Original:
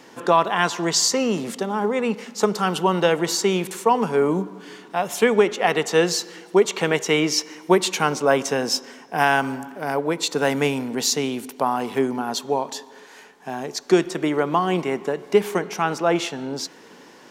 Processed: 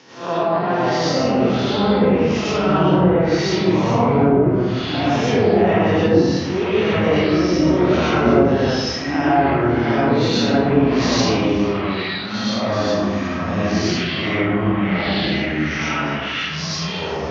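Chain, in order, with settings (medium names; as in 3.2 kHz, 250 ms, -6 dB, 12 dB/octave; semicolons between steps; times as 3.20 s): spectral blur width 136 ms; steep low-pass 6.3 kHz 72 dB/octave; low-pass that closes with the level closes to 660 Hz, closed at -17.5 dBFS; treble shelf 2.5 kHz +9.5 dB; high-pass sweep 100 Hz -> 2 kHz, 10.81–11.44 s; in parallel at -1 dB: peak limiter -16 dBFS, peak gain reduction 7 dB; on the sum: ever faster or slower copies 320 ms, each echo -5 st, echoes 3; algorithmic reverb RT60 0.85 s, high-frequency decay 0.75×, pre-delay 60 ms, DRR -7.5 dB; trim -7.5 dB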